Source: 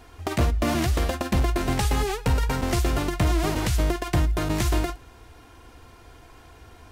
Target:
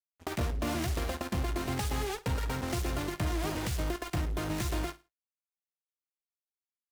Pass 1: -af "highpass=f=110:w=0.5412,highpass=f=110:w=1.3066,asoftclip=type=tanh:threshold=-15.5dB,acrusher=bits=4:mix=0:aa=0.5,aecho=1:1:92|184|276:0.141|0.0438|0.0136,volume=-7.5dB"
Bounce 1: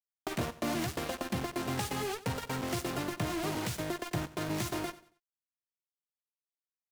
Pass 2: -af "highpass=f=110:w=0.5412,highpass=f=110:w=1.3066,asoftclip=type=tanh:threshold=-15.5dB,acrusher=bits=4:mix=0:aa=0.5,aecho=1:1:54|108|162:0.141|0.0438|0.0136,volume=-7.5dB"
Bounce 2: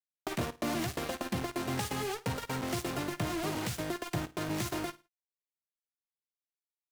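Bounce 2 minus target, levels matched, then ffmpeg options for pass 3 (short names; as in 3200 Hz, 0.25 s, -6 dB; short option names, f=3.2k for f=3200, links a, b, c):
125 Hz band -3.0 dB
-af "highpass=f=54:w=0.5412,highpass=f=54:w=1.3066,asoftclip=type=tanh:threshold=-15.5dB,acrusher=bits=4:mix=0:aa=0.5,aecho=1:1:54|108|162:0.141|0.0438|0.0136,volume=-7.5dB"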